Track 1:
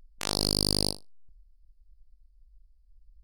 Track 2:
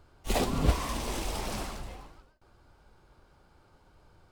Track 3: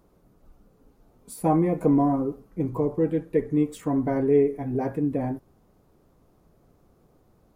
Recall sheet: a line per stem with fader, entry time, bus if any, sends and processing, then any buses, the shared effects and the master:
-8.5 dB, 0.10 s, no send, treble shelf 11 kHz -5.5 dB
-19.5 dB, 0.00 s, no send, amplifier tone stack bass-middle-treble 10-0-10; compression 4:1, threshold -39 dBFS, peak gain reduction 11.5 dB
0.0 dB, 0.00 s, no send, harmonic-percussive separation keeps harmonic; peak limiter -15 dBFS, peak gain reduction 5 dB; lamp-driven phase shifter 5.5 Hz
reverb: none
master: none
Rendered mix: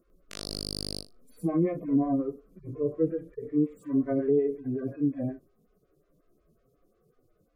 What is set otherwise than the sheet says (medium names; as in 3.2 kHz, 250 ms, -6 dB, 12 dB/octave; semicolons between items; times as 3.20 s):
stem 2: muted; master: extra Butterworth band-stop 870 Hz, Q 2